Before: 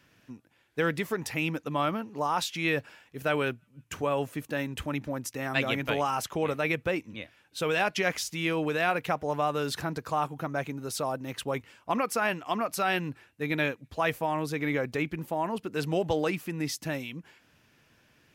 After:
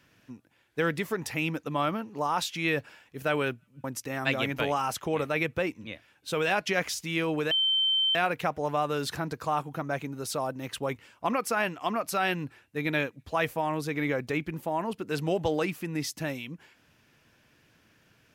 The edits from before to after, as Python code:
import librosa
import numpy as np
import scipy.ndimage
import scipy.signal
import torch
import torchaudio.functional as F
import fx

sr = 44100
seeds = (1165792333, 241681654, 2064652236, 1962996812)

y = fx.edit(x, sr, fx.cut(start_s=3.84, length_s=1.29),
    fx.insert_tone(at_s=8.8, length_s=0.64, hz=3100.0, db=-22.0), tone=tone)